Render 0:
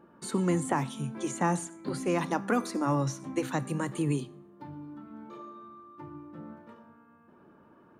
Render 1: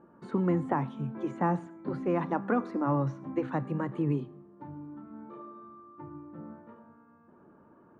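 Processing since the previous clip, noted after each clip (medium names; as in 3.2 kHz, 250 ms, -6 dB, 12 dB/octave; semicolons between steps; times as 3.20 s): low-pass 1.5 kHz 12 dB/octave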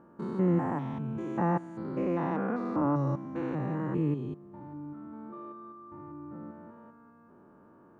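spectrogram pixelated in time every 200 ms; trim +2.5 dB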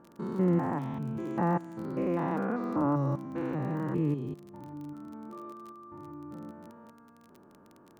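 crackle 30 per s -41 dBFS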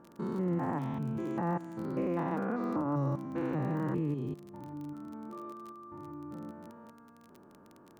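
peak limiter -24.5 dBFS, peak gain reduction 8 dB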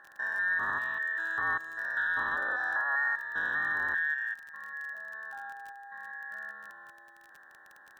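every band turned upside down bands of 2 kHz; trim +1.5 dB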